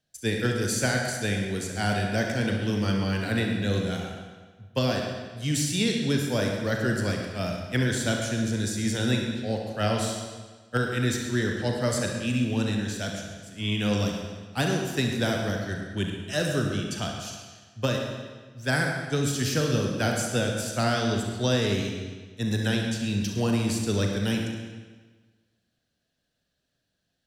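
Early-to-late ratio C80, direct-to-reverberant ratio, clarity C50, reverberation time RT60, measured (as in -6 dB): 4.0 dB, 1.0 dB, 2.5 dB, 1.4 s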